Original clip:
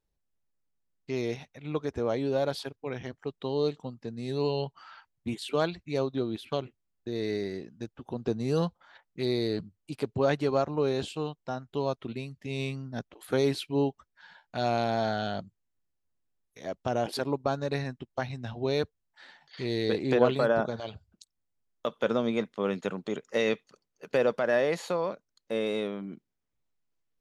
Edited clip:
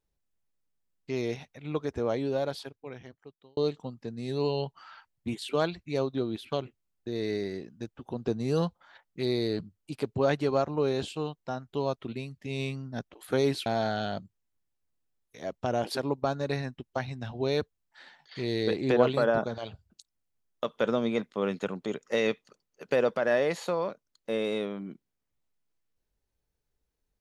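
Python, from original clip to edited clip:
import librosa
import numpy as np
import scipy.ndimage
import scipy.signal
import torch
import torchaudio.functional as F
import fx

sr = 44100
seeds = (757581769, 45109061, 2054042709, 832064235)

y = fx.edit(x, sr, fx.fade_out_span(start_s=2.11, length_s=1.46),
    fx.cut(start_s=13.66, length_s=1.22), tone=tone)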